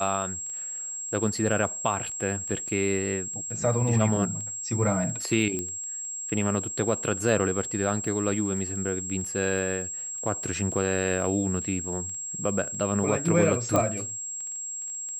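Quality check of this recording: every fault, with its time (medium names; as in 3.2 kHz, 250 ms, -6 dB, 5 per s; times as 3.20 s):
crackle 11 per s -34 dBFS
whine 7.6 kHz -32 dBFS
5.59 s: pop -17 dBFS
13.76 s: pop -10 dBFS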